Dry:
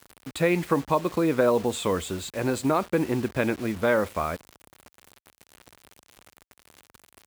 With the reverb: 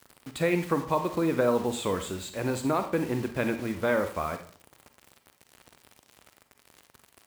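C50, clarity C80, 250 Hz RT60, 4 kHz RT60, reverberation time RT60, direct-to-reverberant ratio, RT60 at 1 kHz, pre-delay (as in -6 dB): 9.0 dB, 14.0 dB, 0.50 s, 0.35 s, 0.45 s, 7.5 dB, 0.40 s, 37 ms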